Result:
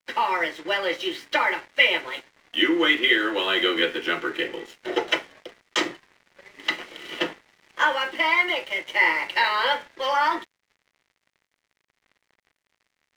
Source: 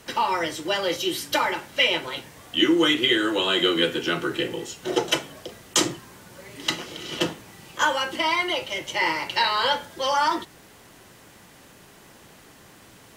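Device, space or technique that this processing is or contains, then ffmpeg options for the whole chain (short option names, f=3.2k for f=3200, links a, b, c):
pocket radio on a weak battery: -af "highpass=310,lowpass=3.4k,aeval=exprs='sgn(val(0))*max(abs(val(0))-0.00501,0)':c=same,equalizer=f=2k:t=o:w=0.54:g=7.5"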